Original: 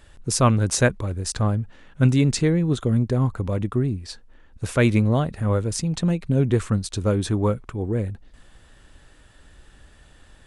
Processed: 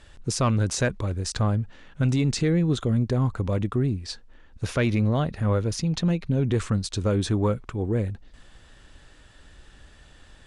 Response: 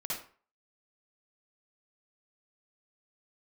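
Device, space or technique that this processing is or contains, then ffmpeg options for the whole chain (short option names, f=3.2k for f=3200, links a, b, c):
soft clipper into limiter: -filter_complex "[0:a]aemphasis=mode=production:type=cd,asoftclip=type=tanh:threshold=-8dB,alimiter=limit=-15dB:level=0:latency=1:release=59,lowpass=5.6k,asettb=1/sr,asplit=3[a][b][c];[a]atrim=end=4.654[d];[b]atrim=start=4.65:end=6.52,asetpts=PTS-STARTPTS,afade=t=in:d=0.004:c=qsin,afade=t=out:st=1.866:d=0.004:c=qsin,equalizer=f=8k:t=o:w=0.25:g=-10.5[e];[c]atrim=start=6.516[f];[d][e]acrossfade=d=0.004:c1=hsin:c2=qsin[g];[g][f]acrossfade=d=0.004:c1=qsin:c2=hsin"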